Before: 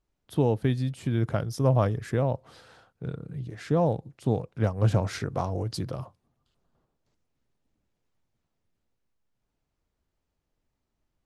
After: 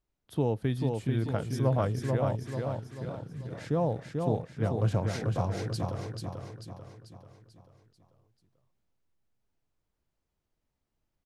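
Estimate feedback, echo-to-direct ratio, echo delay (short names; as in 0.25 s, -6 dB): 48%, -3.0 dB, 0.44 s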